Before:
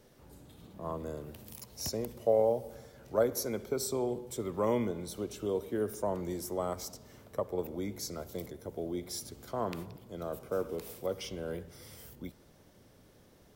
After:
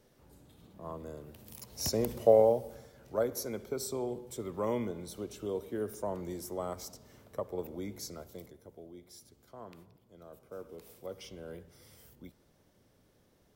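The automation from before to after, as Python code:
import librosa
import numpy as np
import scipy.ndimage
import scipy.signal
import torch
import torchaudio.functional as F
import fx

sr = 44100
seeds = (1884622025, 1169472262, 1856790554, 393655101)

y = fx.gain(x, sr, db=fx.line((1.34, -4.5), (2.13, 7.0), (2.93, -3.0), (8.03, -3.0), (8.93, -14.0), (10.25, -14.0), (11.22, -7.0)))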